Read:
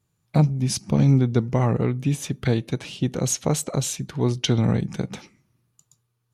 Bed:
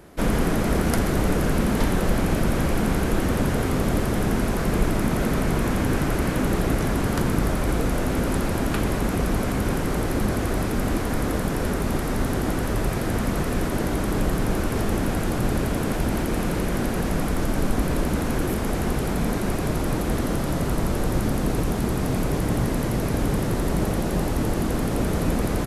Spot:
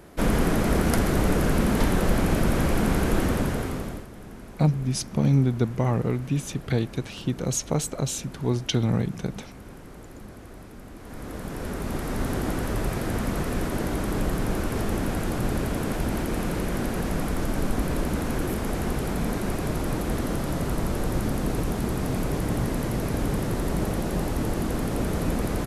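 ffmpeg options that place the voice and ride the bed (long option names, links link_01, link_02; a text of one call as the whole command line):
ffmpeg -i stem1.wav -i stem2.wav -filter_complex "[0:a]adelay=4250,volume=-3dB[link_01];[1:a]volume=16dB,afade=type=out:start_time=3.21:duration=0.86:silence=0.112202,afade=type=in:start_time=10.96:duration=1.35:silence=0.149624[link_02];[link_01][link_02]amix=inputs=2:normalize=0" out.wav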